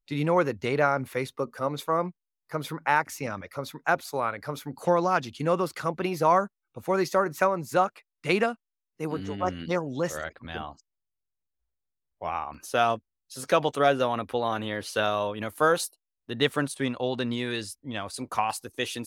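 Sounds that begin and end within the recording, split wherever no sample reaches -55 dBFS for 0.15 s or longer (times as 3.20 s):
2.49–6.48 s
6.75–8.01 s
8.24–8.55 s
8.99–10.80 s
12.21–12.99 s
13.30–15.95 s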